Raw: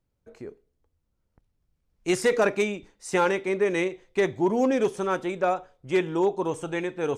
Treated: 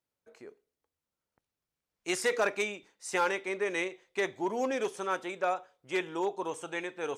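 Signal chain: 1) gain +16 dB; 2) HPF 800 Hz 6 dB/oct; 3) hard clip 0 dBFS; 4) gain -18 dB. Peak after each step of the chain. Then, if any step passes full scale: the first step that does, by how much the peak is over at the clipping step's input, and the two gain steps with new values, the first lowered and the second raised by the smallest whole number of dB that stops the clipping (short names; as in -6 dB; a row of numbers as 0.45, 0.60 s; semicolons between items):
+4.5, +3.5, 0.0, -18.0 dBFS; step 1, 3.5 dB; step 1 +12 dB, step 4 -14 dB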